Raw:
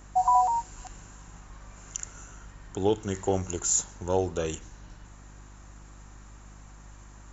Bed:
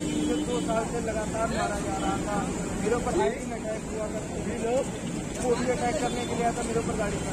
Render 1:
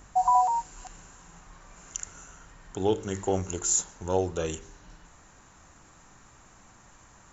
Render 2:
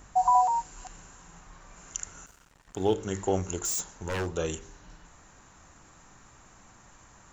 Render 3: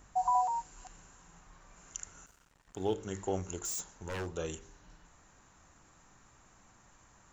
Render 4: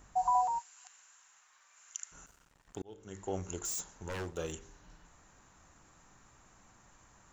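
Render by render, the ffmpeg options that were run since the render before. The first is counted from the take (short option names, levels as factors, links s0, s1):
-af "bandreject=f=50:t=h:w=4,bandreject=f=100:t=h:w=4,bandreject=f=150:t=h:w=4,bandreject=f=200:t=h:w=4,bandreject=f=250:t=h:w=4,bandreject=f=300:t=h:w=4,bandreject=f=350:t=h:w=4,bandreject=f=400:t=h:w=4,bandreject=f=450:t=h:w=4,bandreject=f=500:t=h:w=4,bandreject=f=550:t=h:w=4,bandreject=f=600:t=h:w=4"
-filter_complex "[0:a]asettb=1/sr,asplit=3[s0][s1][s2];[s0]atrim=end=2.264[s3];[s1]atrim=start=2.26:end=2.94,asetpts=PTS-STARTPTS,afade=t=in:d=0.004:c=qsin,afade=t=out:st=0.676:d=0.004:c=qsin,aeval=exprs='sgn(val(0))*max(abs(val(0))-0.00335,0)':c=same[s4];[s2]atrim=start=2.936[s5];[s3][s4]acrossfade=d=0.004:c1=hsin:c2=qsin[s6];[s6][s5]acrossfade=d=0.004:c1=qsin:c2=hsin,asettb=1/sr,asplit=3[s7][s8][s9];[s7]atrim=end=3.654[s10];[s8]atrim=start=3.65:end=4.33,asetpts=PTS-STARTPTS,afade=t=in:d=0.004:c=qsin,afade=t=out:st=0.676:d=0.004:c=qsin,aeval=exprs='0.0562*(abs(mod(val(0)/0.0562+3,4)-2)-1)':c=same[s11];[s9]atrim=start=4.326[s12];[s10][s11]acrossfade=d=0.004:c1=hsin:c2=qsin[s13];[s13][s12]acrossfade=d=0.004:c1=qsin:c2=hsin"
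-af "volume=0.447"
-filter_complex "[0:a]asplit=3[s0][s1][s2];[s0]afade=t=out:st=0.58:d=0.02[s3];[s1]highpass=1500,afade=t=in:st=0.58:d=0.02,afade=t=out:st=2.11:d=0.02[s4];[s2]afade=t=in:st=2.11:d=0.02[s5];[s3][s4][s5]amix=inputs=3:normalize=0,asettb=1/sr,asplit=3[s6][s7][s8];[s6]atrim=end=4.124[s9];[s7]atrim=start=4.12:end=4.52,asetpts=PTS-STARTPTS,afade=t=in:d=0.004:c=qsin,afade=t=out:st=0.396:d=0.004:c=qsin,aeval=exprs='sgn(val(0))*max(abs(val(0))-0.00224,0)':c=same[s10];[s8]atrim=start=4.516[s11];[s9][s10]acrossfade=d=0.004:c1=hsin:c2=qsin[s12];[s12][s11]acrossfade=d=0.004:c1=qsin:c2=hsin,asplit=2[s13][s14];[s13]atrim=end=2.82,asetpts=PTS-STARTPTS,afade=t=out:st=2.816:d=0.004:c=hsin[s15];[s14]atrim=start=2.82,asetpts=PTS-STARTPTS,afade=t=in:d=0.71[s16];[s15][s16]concat=n=2:v=0:a=1"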